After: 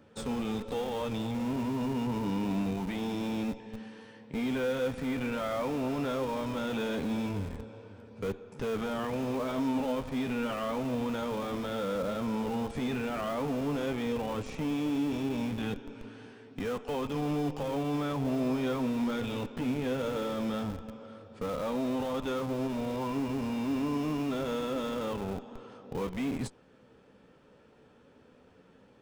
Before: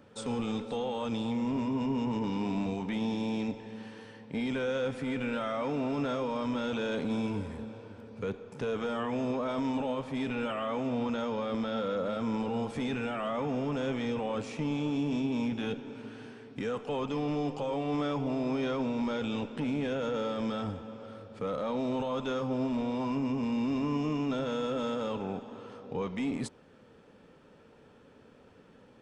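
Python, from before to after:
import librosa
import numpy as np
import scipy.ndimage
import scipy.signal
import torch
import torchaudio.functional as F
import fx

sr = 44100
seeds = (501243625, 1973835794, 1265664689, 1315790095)

p1 = fx.chorus_voices(x, sr, voices=2, hz=0.13, base_ms=13, depth_ms=3.2, mix_pct=25)
p2 = fx.schmitt(p1, sr, flips_db=-36.5)
y = p1 + (p2 * librosa.db_to_amplitude(-7.5))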